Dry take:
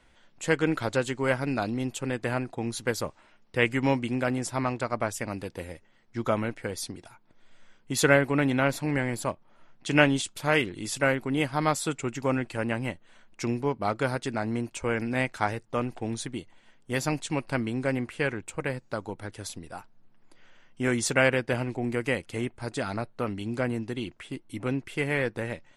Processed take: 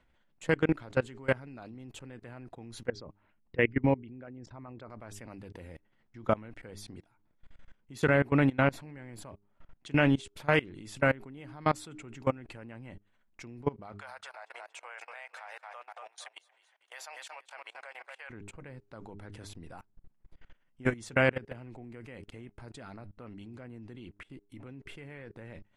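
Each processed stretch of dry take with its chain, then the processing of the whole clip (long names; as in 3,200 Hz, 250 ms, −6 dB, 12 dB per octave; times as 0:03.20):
0:02.87–0:04.90: spectral envelope exaggerated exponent 1.5 + low-pass filter 5,100 Hz 24 dB per octave
0:13.92–0:18.30: Butterworth high-pass 650 Hz + repeating echo 232 ms, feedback 30%, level −10 dB
whole clip: bass and treble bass +4 dB, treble −9 dB; hum removal 101.3 Hz, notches 4; output level in coarse steps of 23 dB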